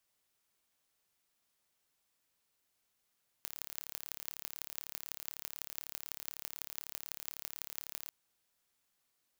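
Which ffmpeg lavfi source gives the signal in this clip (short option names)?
-f lavfi -i "aevalsrc='0.282*eq(mod(n,1225),0)*(0.5+0.5*eq(mod(n,7350),0))':d=4.65:s=44100"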